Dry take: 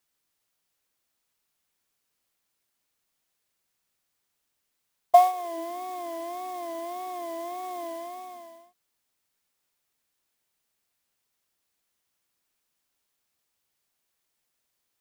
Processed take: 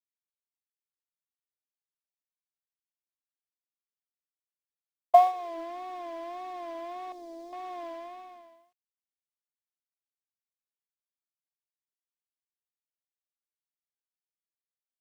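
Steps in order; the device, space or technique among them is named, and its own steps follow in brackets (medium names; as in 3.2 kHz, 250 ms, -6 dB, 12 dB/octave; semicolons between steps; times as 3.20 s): phone line with mismatched companding (band-pass 310–3400 Hz; companding laws mixed up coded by A); 7.12–7.53 s: high-order bell 1.6 kHz -15.5 dB 2.4 oct; trim -1 dB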